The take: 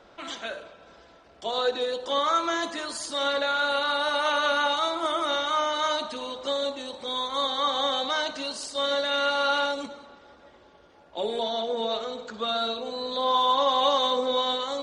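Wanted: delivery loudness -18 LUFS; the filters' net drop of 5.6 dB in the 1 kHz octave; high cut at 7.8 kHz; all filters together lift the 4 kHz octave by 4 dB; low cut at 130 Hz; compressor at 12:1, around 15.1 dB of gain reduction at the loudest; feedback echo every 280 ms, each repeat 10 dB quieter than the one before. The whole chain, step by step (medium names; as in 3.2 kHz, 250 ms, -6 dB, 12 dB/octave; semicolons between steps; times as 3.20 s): high-pass 130 Hz; low-pass 7.8 kHz; peaking EQ 1 kHz -7.5 dB; peaking EQ 4 kHz +5 dB; compression 12:1, threshold -36 dBFS; feedback delay 280 ms, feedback 32%, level -10 dB; trim +19.5 dB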